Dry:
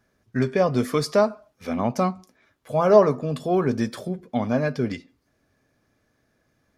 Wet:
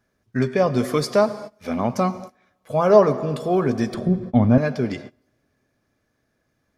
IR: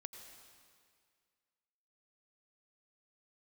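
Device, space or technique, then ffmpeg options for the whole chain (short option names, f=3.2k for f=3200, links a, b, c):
keyed gated reverb: -filter_complex "[0:a]asplit=3[a][b][c];[1:a]atrim=start_sample=2205[d];[b][d]afir=irnorm=-1:irlink=0[e];[c]apad=whole_len=298859[f];[e][f]sidechaingate=range=-24dB:threshold=-43dB:ratio=16:detection=peak,volume=2dB[g];[a][g]amix=inputs=2:normalize=0,asettb=1/sr,asplit=3[h][i][j];[h]atrim=end=3.944[k];[i]atrim=start=3.94:end=4.58,asetpts=PTS-STARTPTS,afade=t=in:d=0.004:c=qsin,afade=t=out:st=0.636:d=0.004:c=qsin,aemphasis=mode=reproduction:type=riaa[l];[j]atrim=start=4.576[m];[k][l]acrossfade=d=0.004:c1=hsin:c2=qsin[n];[n][m]acrossfade=d=0.004:c1=qsin:c2=hsin,volume=-3dB"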